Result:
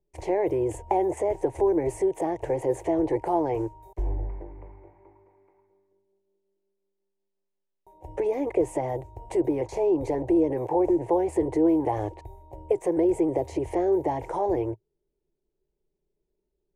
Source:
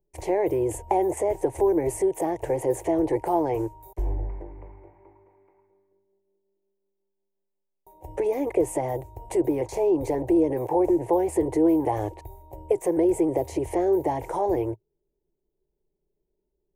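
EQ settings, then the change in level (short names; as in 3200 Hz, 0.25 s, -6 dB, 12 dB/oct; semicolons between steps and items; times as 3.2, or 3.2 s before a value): air absorption 57 m; -1.0 dB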